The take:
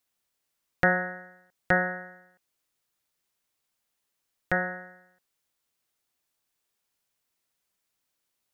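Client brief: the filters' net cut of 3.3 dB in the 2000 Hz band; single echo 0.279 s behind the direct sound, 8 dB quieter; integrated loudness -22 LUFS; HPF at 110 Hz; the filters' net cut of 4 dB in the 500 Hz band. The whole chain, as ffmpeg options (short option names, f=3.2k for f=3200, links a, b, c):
-af "highpass=110,equalizer=f=500:t=o:g=-4.5,equalizer=f=2k:t=o:g=-4,aecho=1:1:279:0.398,volume=9.5dB"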